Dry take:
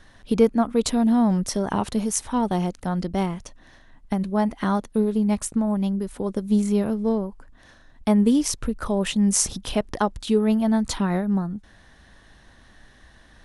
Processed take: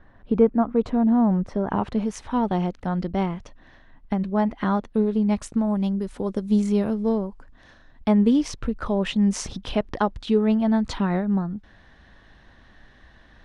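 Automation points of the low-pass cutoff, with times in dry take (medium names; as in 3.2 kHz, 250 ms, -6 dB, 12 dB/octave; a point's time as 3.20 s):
1.50 s 1.4 kHz
2.19 s 3.3 kHz
4.89 s 3.3 kHz
5.83 s 6.5 kHz
7.24 s 6.5 kHz
8.12 s 3.8 kHz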